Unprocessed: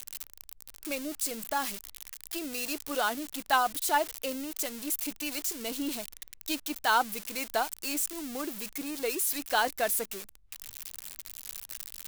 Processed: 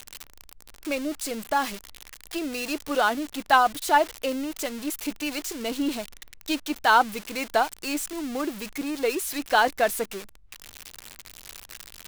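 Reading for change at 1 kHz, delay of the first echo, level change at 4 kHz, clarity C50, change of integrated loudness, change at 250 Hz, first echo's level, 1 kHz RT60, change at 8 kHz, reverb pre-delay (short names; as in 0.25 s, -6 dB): +7.0 dB, none, +3.5 dB, none, +5.5 dB, +7.5 dB, none, none, -1.5 dB, none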